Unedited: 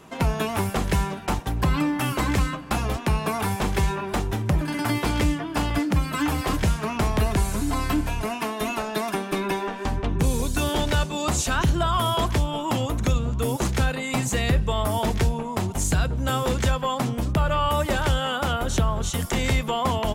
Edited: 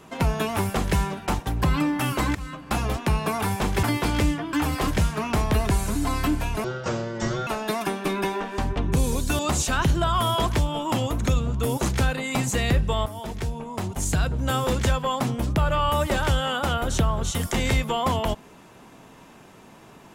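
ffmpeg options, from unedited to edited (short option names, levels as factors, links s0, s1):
-filter_complex "[0:a]asplit=8[s0][s1][s2][s3][s4][s5][s6][s7];[s0]atrim=end=2.35,asetpts=PTS-STARTPTS,afade=t=out:st=2.346:d=0.004:c=hsin:silence=0.0944061[s8];[s1]atrim=start=2.35:end=3.832,asetpts=PTS-STARTPTS,afade=t=in:d=0.41:silence=0.0944061[s9];[s2]atrim=start=4.838:end=5.542[s10];[s3]atrim=start=6.188:end=8.304[s11];[s4]atrim=start=8.3:end=8.74,asetpts=PTS-STARTPTS,asetrate=23373,aresample=44100,atrim=end_sample=36611,asetpts=PTS-STARTPTS[s12];[s5]atrim=start=8.736:end=10.662[s13];[s6]atrim=start=11.178:end=14.85,asetpts=PTS-STARTPTS,afade=t=out:st=3.668:d=0.004:c=hsin:silence=0.211349[s14];[s7]atrim=start=14.85,asetpts=PTS-STARTPTS,afade=t=in:d=1.31:silence=0.211349[s15];[s8][s9]concat=n=2:v=0:a=1[s16];[s16][s10]acrossfade=d=0.004:c1=hsin:c2=hsin[s17];[s17][s11]acrossfade=d=0.004:c1=hsin:c2=hsin[s18];[s18][s12]acrossfade=d=0.004:c1=hsin:c2=hsin[s19];[s19][s13]acrossfade=d=0.004:c1=hsin:c2=hsin[s20];[s14][s15]concat=n=2:v=0:a=1[s21];[s20][s21]acrossfade=d=0.004:c1=hsin:c2=hsin"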